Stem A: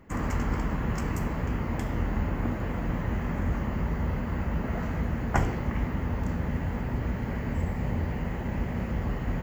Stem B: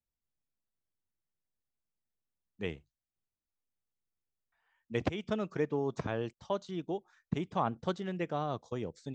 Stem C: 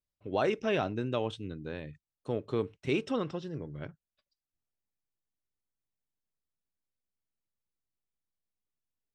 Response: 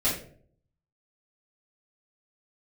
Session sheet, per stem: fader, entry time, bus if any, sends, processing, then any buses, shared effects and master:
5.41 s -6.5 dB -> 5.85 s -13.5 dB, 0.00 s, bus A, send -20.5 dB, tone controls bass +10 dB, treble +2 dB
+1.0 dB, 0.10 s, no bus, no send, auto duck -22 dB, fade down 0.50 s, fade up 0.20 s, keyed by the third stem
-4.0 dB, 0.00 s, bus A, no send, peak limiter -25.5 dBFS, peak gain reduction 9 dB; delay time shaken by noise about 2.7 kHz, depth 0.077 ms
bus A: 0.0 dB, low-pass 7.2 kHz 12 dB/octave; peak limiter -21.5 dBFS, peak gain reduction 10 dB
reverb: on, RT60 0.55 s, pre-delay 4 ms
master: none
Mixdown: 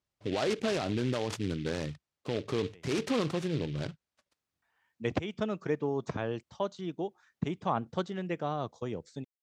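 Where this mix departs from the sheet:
stem A: muted; stem C -4.0 dB -> +7.5 dB; reverb: off; master: extra high-pass 63 Hz

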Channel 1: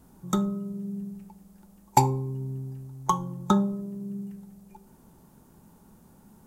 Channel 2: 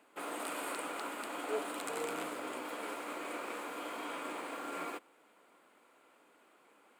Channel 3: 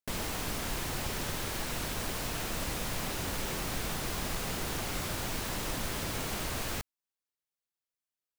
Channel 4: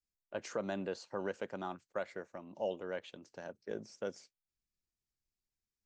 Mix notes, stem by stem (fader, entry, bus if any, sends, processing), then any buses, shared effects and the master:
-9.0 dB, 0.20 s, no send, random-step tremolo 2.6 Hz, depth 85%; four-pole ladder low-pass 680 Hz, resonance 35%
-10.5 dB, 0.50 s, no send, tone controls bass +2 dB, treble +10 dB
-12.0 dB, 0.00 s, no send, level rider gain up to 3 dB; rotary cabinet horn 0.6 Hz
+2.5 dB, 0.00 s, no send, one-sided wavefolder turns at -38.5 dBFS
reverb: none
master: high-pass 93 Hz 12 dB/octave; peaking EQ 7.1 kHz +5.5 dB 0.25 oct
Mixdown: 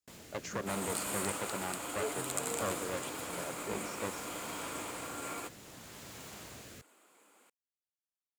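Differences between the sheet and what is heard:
stem 2 -10.5 dB -> -1.5 dB; stem 3: missing level rider gain up to 3 dB

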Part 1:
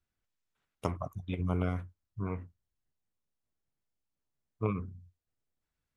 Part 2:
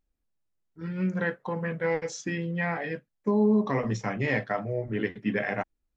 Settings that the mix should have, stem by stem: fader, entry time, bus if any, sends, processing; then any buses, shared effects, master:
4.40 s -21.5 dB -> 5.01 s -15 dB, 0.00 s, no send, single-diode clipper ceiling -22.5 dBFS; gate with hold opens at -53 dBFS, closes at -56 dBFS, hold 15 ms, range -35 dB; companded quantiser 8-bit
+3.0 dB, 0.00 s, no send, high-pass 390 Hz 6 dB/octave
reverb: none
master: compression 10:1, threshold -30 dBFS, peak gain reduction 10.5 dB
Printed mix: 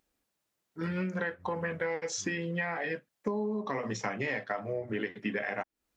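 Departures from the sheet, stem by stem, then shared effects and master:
stem 1 -21.5 dB -> -13.5 dB; stem 2 +3.0 dB -> +11.0 dB

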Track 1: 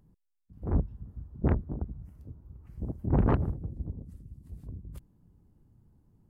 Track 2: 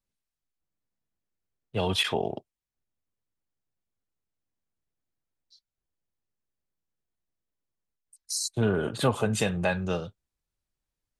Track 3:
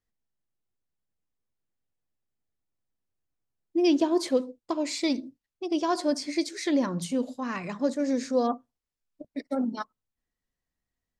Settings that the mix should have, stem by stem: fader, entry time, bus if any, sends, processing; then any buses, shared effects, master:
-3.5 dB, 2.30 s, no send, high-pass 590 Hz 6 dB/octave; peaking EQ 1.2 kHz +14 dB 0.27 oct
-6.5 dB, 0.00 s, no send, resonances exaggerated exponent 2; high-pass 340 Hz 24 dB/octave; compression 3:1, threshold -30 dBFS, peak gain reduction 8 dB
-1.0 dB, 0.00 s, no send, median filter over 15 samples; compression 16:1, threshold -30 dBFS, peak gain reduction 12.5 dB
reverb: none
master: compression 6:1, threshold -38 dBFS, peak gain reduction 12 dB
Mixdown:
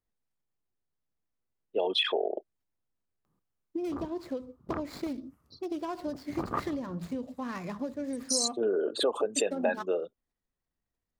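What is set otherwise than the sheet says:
stem 1: entry 2.30 s -> 3.25 s; stem 2 -6.5 dB -> +4.5 dB; master: missing compression 6:1, threshold -38 dBFS, peak gain reduction 12 dB

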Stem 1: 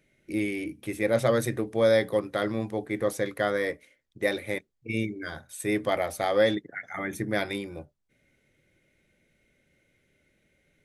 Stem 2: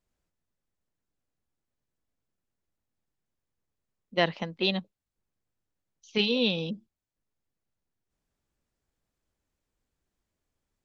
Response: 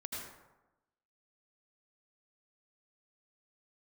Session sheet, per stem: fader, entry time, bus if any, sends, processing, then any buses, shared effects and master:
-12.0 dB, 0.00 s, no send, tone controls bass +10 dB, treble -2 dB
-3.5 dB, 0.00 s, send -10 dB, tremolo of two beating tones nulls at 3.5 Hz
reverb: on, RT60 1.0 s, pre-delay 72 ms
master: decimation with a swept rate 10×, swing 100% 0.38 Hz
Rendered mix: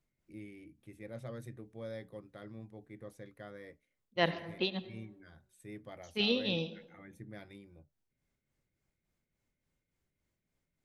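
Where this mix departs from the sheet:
stem 1 -12.0 dB -> -23.5 dB; master: missing decimation with a swept rate 10×, swing 100% 0.38 Hz

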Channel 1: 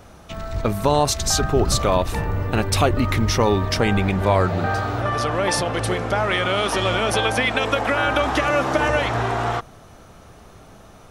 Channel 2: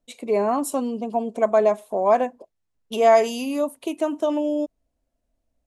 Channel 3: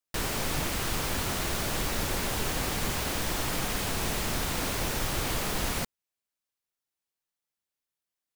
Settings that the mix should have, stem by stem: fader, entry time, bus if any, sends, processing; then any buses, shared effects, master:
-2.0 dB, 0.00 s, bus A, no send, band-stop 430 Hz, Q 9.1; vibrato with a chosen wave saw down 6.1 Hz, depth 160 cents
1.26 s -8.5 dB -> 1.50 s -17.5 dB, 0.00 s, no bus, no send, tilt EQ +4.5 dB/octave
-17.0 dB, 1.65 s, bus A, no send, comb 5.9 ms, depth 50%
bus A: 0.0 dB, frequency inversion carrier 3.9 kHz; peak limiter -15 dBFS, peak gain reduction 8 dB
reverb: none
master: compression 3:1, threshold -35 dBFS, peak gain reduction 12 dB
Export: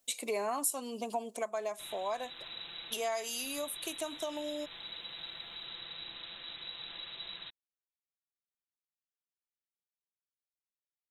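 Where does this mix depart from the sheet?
stem 1: muted; stem 2 -8.5 dB -> +1.5 dB

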